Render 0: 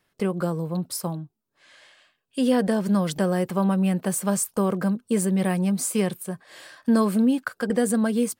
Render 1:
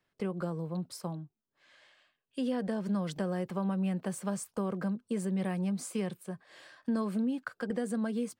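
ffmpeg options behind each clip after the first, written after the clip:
-filter_complex "[0:a]equalizer=f=13000:w=0.63:g=-12.5,acrossover=split=150[s0][s1];[s1]acompressor=threshold=0.0708:ratio=2.5[s2];[s0][s2]amix=inputs=2:normalize=0,volume=0.398"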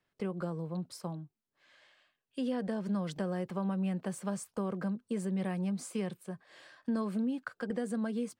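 -af "highshelf=f=11000:g=-5.5,volume=0.841"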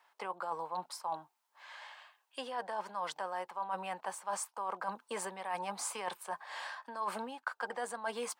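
-af "highpass=f=890:t=q:w=4.8,areverse,acompressor=threshold=0.00631:ratio=12,areverse,volume=3.16"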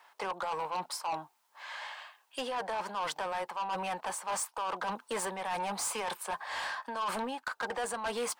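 -af "asoftclip=type=tanh:threshold=0.0126,volume=2.66"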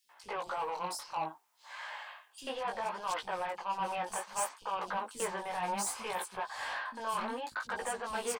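-filter_complex "[0:a]flanger=delay=15.5:depth=7.1:speed=0.64,acrossover=split=260|4000[s0][s1][s2];[s0]adelay=40[s3];[s1]adelay=90[s4];[s3][s4][s2]amix=inputs=3:normalize=0,volume=1.26"

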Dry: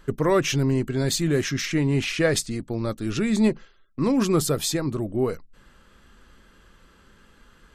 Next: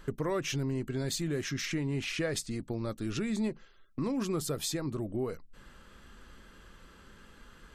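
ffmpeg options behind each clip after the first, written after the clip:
-af "acompressor=threshold=0.0178:ratio=2.5"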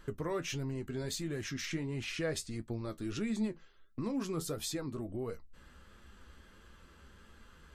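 -af "equalizer=f=68:t=o:w=0.26:g=13.5,flanger=delay=8.6:depth=4.1:regen=54:speed=1.5:shape=sinusoidal"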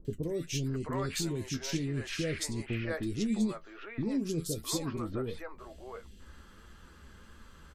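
-filter_complex "[0:a]acrossover=split=530|2500[s0][s1][s2];[s2]adelay=50[s3];[s1]adelay=660[s4];[s0][s4][s3]amix=inputs=3:normalize=0,volume=1.68"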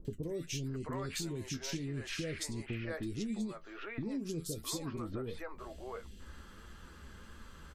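-af "acompressor=threshold=0.0112:ratio=3,volume=1.19"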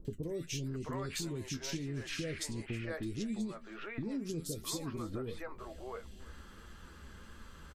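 -af "aecho=1:1:321|642:0.0841|0.0286"

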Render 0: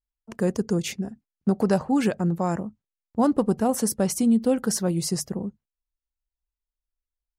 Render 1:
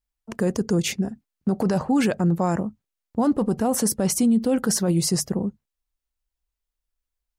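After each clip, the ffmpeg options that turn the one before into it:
-af "alimiter=limit=0.126:level=0:latency=1:release=12,volume=1.78"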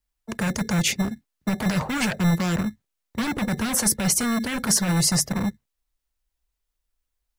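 -filter_complex "[0:a]acrossover=split=200|1400[s0][s1][s2];[s0]acrusher=samples=23:mix=1:aa=0.000001[s3];[s1]aeval=exprs='0.0355*(abs(mod(val(0)/0.0355+3,4)-2)-1)':c=same[s4];[s3][s4][s2]amix=inputs=3:normalize=0,volume=1.58"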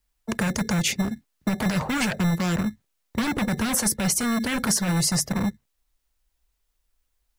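-af "acompressor=threshold=0.0316:ratio=2.5,volume=2"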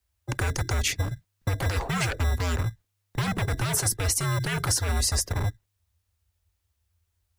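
-af "afreqshift=-100,volume=0.794"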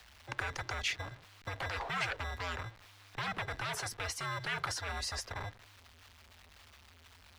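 -filter_complex "[0:a]aeval=exprs='val(0)+0.5*0.0141*sgn(val(0))':c=same,acrossover=split=590 4700:gain=0.2 1 0.126[s0][s1][s2];[s0][s1][s2]amix=inputs=3:normalize=0,volume=0.562"

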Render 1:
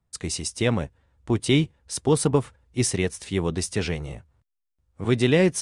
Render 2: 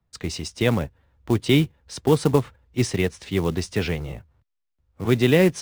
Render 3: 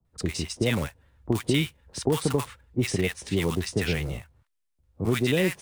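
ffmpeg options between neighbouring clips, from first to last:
-filter_complex "[0:a]lowpass=4700,acrossover=split=130[s0][s1];[s1]acrusher=bits=5:mode=log:mix=0:aa=0.000001[s2];[s0][s2]amix=inputs=2:normalize=0,volume=1.26"
-filter_complex "[0:a]equalizer=f=9200:w=1.7:g=6,acrossover=split=1100|3100[s0][s1][s2];[s0]acompressor=threshold=0.0708:ratio=4[s3];[s1]acompressor=threshold=0.0282:ratio=4[s4];[s2]acompressor=threshold=0.0158:ratio=4[s5];[s3][s4][s5]amix=inputs=3:normalize=0,acrossover=split=900[s6][s7];[s7]adelay=50[s8];[s6][s8]amix=inputs=2:normalize=0,volume=1.19"

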